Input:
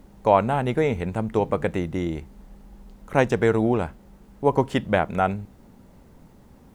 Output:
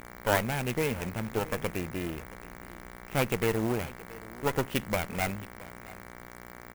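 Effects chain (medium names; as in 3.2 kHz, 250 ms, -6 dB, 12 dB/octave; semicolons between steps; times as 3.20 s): comb filter that takes the minimum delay 0.33 ms; peaking EQ 2.7 kHz +9 dB 1.1 oct; mains buzz 60 Hz, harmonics 38, -39 dBFS -1 dB/octave; on a send: delay 672 ms -19.5 dB; on the sum: sampling jitter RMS 0.039 ms; trim -8 dB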